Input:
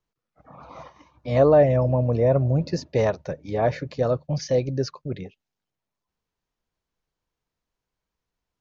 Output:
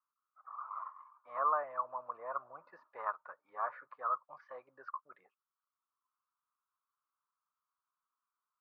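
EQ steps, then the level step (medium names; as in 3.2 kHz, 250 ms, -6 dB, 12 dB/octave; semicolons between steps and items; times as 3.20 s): Butterworth band-pass 1.2 kHz, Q 3.8; distance through air 130 m; +6.5 dB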